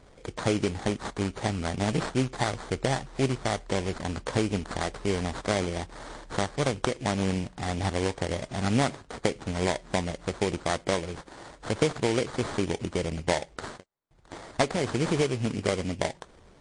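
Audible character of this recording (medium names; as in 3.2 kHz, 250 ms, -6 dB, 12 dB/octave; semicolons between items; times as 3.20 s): aliases and images of a low sample rate 2.7 kHz, jitter 20%; MP3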